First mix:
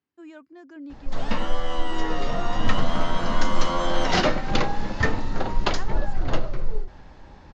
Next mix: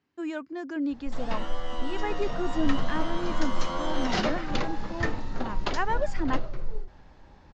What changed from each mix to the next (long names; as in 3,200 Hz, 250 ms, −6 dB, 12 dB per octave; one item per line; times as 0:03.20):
speech +10.5 dB
background −6.5 dB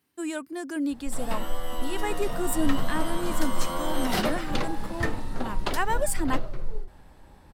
speech: add high-shelf EQ 3,700 Hz +11 dB
master: remove Chebyshev low-pass filter 6,900 Hz, order 6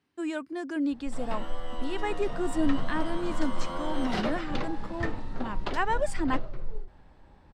background −3.5 dB
master: add high-frequency loss of the air 110 metres